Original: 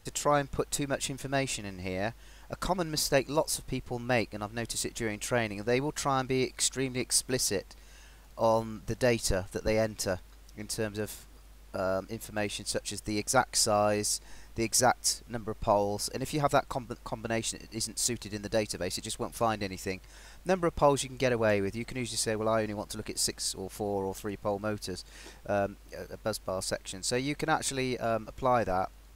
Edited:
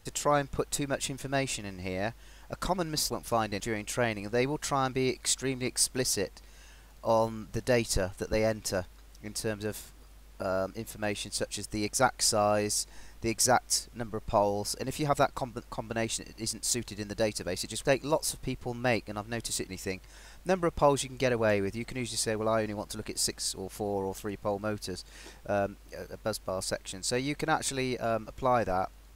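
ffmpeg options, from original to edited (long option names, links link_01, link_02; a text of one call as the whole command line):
ffmpeg -i in.wav -filter_complex "[0:a]asplit=5[link_01][link_02][link_03][link_04][link_05];[link_01]atrim=end=3.102[link_06];[link_02]atrim=start=19.188:end=19.692[link_07];[link_03]atrim=start=4.938:end=19.192[link_08];[link_04]atrim=start=3.098:end=4.942[link_09];[link_05]atrim=start=19.688[link_10];[link_06][link_07]acrossfade=duration=0.004:curve1=hsin:curve2=hsin[link_11];[link_11][link_08]acrossfade=duration=0.004:curve1=hsin:curve2=hsin[link_12];[link_12][link_09]acrossfade=duration=0.004:curve1=hsin:curve2=hsin[link_13];[link_13][link_10]acrossfade=duration=0.004:curve1=hsin:curve2=hsin" out.wav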